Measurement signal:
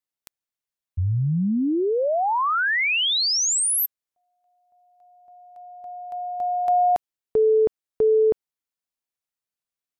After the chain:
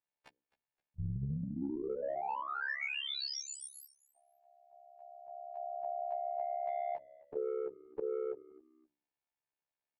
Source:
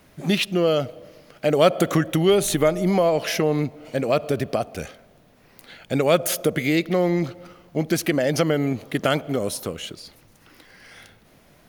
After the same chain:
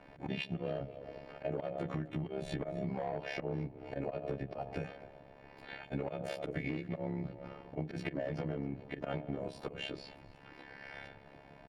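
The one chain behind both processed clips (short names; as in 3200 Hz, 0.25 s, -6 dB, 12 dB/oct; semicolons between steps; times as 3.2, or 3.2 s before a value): frequency quantiser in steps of 2 st; LPF 1400 Hz 12 dB/oct; notches 60/120/180/240/300/360/420/480/540 Hz; auto swell 0.148 s; bell 750 Hz +2.5 dB 0.7 oct; comb 6.8 ms, depth 48%; soft clip -14 dBFS; AM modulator 69 Hz, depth 80%; dynamic EQ 160 Hz, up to +6 dB, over -46 dBFS, Q 3.4; compressor 12:1, threshold -38 dBFS; on a send: frequency-shifting echo 0.261 s, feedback 32%, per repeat -61 Hz, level -21 dB; on the sum: gain +3.5 dB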